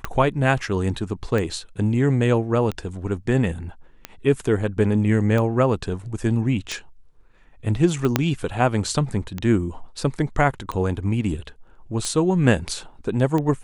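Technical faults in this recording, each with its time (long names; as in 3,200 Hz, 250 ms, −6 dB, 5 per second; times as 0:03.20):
scratch tick 45 rpm −13 dBFS
0:08.16: click −2 dBFS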